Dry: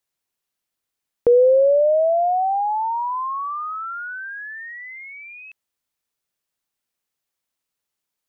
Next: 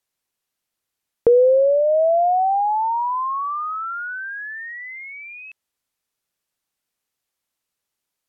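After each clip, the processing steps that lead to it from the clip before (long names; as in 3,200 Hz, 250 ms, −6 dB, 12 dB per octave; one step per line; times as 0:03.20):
treble cut that deepens with the level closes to 570 Hz, closed at −13.5 dBFS
level +2 dB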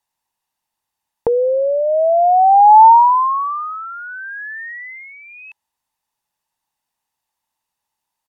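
parametric band 890 Hz +13 dB 0.42 octaves
comb filter 1.1 ms, depth 33%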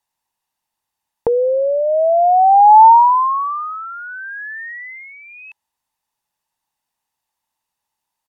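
no processing that can be heard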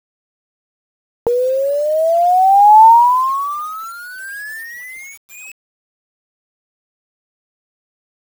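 bit-depth reduction 6 bits, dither none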